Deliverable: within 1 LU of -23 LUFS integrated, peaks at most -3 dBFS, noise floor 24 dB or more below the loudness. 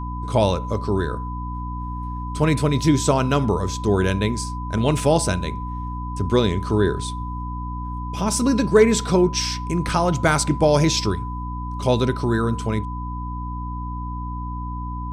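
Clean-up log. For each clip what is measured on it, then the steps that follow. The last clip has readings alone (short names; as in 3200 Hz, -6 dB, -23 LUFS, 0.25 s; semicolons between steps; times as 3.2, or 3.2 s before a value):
hum 60 Hz; harmonics up to 300 Hz; hum level -27 dBFS; steady tone 1000 Hz; tone level -32 dBFS; loudness -22.0 LUFS; peak -3.5 dBFS; loudness target -23.0 LUFS
-> notches 60/120/180/240/300 Hz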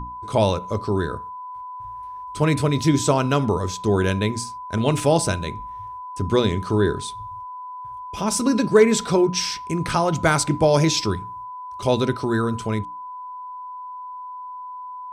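hum none; steady tone 1000 Hz; tone level -32 dBFS
-> notch 1000 Hz, Q 30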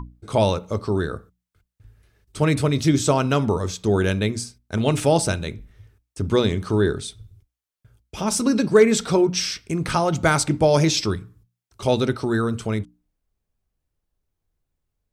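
steady tone none; loudness -21.5 LUFS; peak -3.5 dBFS; loudness target -23.0 LUFS
-> gain -1.5 dB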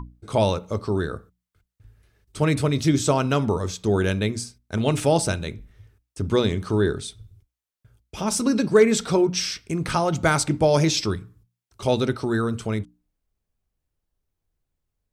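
loudness -23.0 LUFS; peak -5.0 dBFS; noise floor -84 dBFS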